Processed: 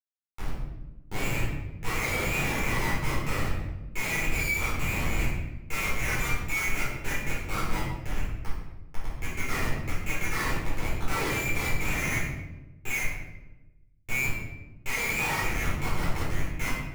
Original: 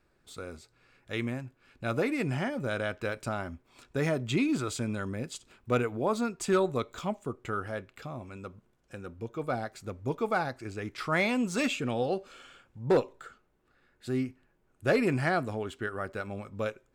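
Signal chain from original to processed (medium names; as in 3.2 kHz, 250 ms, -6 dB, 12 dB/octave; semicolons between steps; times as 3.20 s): frequency inversion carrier 2.6 kHz; Schmitt trigger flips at -31 dBFS; simulated room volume 420 m³, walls mixed, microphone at 4.2 m; trim -6.5 dB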